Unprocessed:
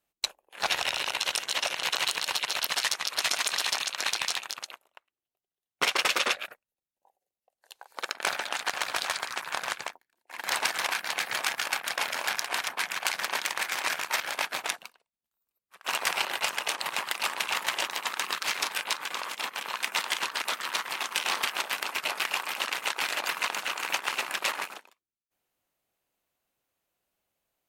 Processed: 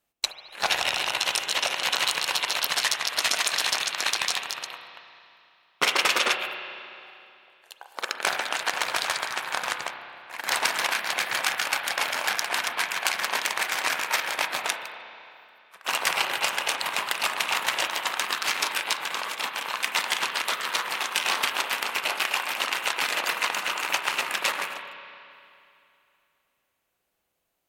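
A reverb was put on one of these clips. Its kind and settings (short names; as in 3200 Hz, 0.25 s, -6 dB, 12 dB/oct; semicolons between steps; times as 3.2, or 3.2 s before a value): spring tank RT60 2.7 s, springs 30/34 ms, chirp 45 ms, DRR 6.5 dB; gain +3 dB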